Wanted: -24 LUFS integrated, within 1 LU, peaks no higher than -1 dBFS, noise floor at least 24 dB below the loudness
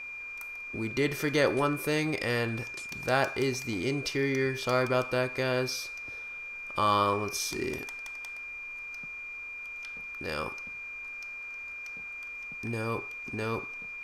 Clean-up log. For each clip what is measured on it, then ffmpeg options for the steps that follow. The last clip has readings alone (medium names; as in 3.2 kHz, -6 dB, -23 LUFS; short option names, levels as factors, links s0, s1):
steady tone 2.4 kHz; tone level -38 dBFS; loudness -31.5 LUFS; peak level -11.5 dBFS; loudness target -24.0 LUFS
-> -af "bandreject=f=2400:w=30"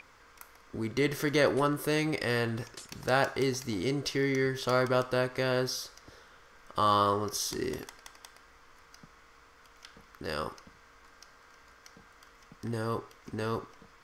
steady tone not found; loudness -30.5 LUFS; peak level -11.5 dBFS; loudness target -24.0 LUFS
-> -af "volume=2.11"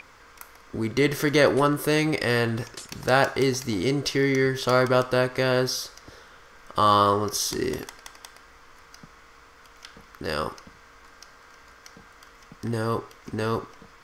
loudness -24.0 LUFS; peak level -5.0 dBFS; noise floor -52 dBFS